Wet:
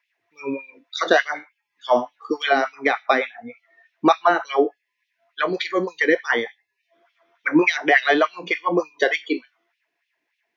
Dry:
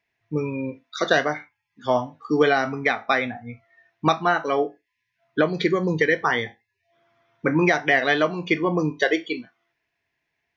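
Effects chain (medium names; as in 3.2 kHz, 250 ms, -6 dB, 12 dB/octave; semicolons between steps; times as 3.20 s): LFO high-pass sine 3.4 Hz 270–3200 Hz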